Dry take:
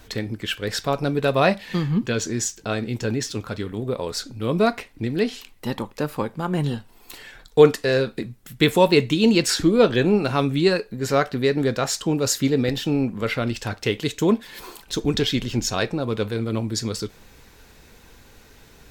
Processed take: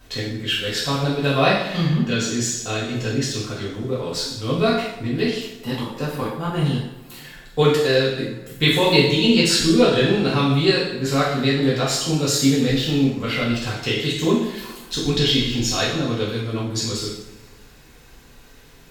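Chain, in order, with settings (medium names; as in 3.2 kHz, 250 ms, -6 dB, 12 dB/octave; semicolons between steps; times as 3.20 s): two-slope reverb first 0.8 s, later 2.7 s, from -21 dB, DRR -7.5 dB; dynamic bell 3.7 kHz, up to +6 dB, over -36 dBFS, Q 1.2; trim -7 dB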